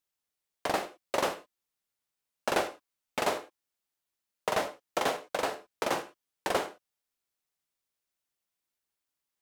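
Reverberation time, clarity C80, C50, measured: non-exponential decay, 17.0 dB, 14.0 dB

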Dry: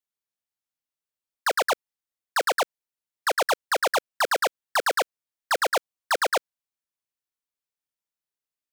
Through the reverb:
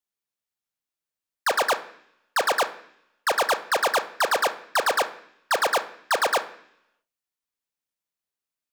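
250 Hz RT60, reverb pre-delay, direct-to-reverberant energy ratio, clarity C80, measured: 0.90 s, 30 ms, 8.5 dB, 17.0 dB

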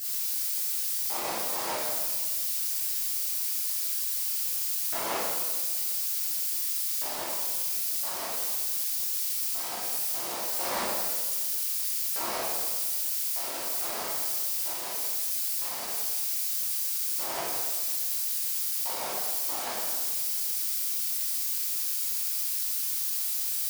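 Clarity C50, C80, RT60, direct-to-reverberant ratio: −2.0 dB, 1.0 dB, 1.5 s, −10.0 dB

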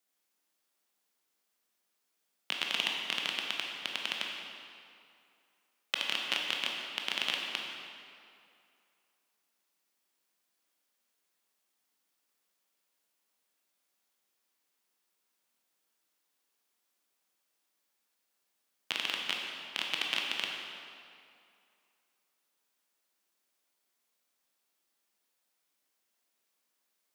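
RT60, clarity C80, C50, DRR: 2.5 s, 2.5 dB, 1.0 dB, −0.5 dB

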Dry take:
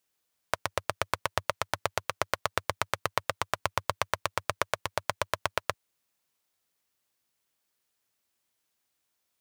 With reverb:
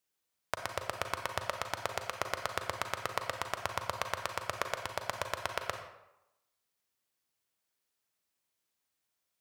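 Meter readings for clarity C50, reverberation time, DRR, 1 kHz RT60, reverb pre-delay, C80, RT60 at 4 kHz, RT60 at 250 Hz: 7.0 dB, 0.90 s, 5.5 dB, 0.95 s, 34 ms, 9.0 dB, 0.60 s, 0.80 s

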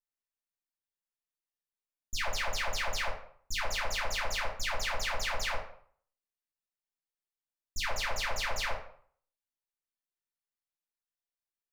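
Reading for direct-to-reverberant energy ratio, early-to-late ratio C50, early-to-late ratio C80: −6.5 dB, 5.0 dB, 10.0 dB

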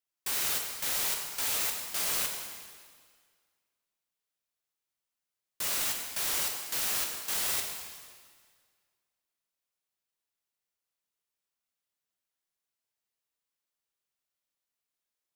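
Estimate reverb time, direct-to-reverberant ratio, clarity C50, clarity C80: 1.8 s, 1.5 dB, 3.5 dB, 5.0 dB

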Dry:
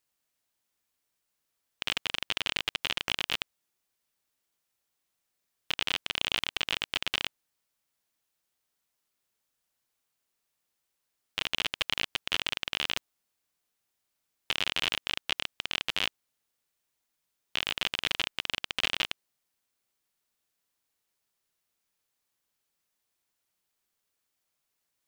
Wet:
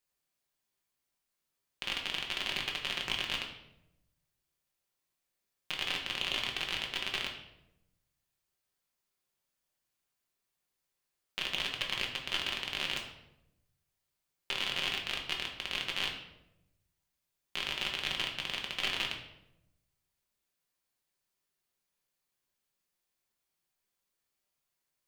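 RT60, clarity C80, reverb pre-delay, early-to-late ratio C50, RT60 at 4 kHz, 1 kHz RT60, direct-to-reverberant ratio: 0.90 s, 9.5 dB, 5 ms, 6.5 dB, 0.60 s, 0.75 s, −0.5 dB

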